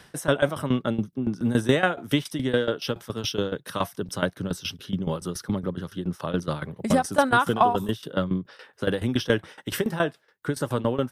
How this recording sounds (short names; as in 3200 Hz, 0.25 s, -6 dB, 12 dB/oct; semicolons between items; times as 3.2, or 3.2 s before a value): tremolo saw down 7.1 Hz, depth 85%